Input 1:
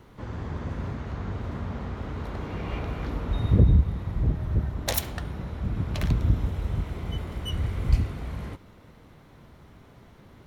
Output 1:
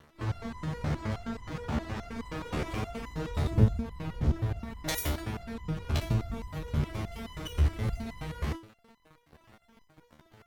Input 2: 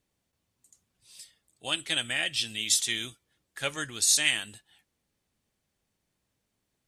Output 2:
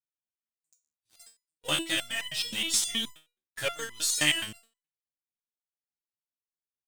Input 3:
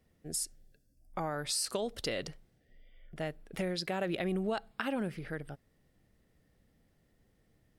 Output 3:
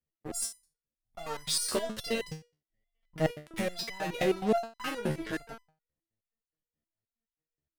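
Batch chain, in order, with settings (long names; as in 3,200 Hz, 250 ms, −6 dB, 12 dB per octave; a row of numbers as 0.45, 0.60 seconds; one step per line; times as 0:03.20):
in parallel at −9 dB: fuzz pedal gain 39 dB, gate −48 dBFS
on the sum: power curve on the samples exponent 1.4
step-sequenced resonator 9.5 Hz 75–1,000 Hz
level +7 dB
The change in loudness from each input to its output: −5.0, −1.5, +3.0 LU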